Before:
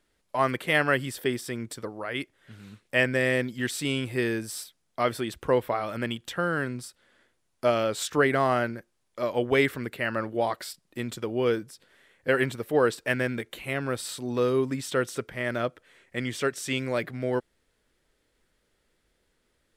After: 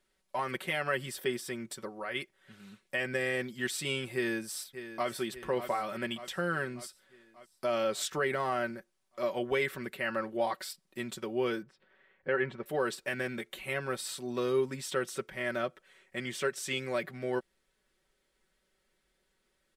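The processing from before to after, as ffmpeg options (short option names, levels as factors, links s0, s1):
-filter_complex "[0:a]asplit=2[s0][s1];[s1]afade=t=in:st=4.14:d=0.01,afade=t=out:st=5.09:d=0.01,aecho=0:1:590|1180|1770|2360|2950|3540|4130:0.237137|0.142282|0.0853695|0.0512217|0.030733|0.0184398|0.0110639[s2];[s0][s2]amix=inputs=2:normalize=0,asettb=1/sr,asplit=3[s3][s4][s5];[s3]atrim=end=11.624[s6];[s4]atrim=start=11.62:end=12.66,asetpts=PTS-STARTPTS,afade=t=in:d=0.004:c=qsin,afade=t=out:st=1.036:d=0.004:c=qsin,lowpass=2200[s7];[s5]atrim=start=12.656[s8];[s6][s7]acrossfade=d=0.004:c1=hsin:c2=qsin[s9];[s9][s8]acrossfade=d=0.004:c1=qsin:c2=hsin,lowshelf=f=380:g=-4.5,alimiter=limit=0.15:level=0:latency=1:release=81,aecho=1:1:5.3:0.65,volume=0.596"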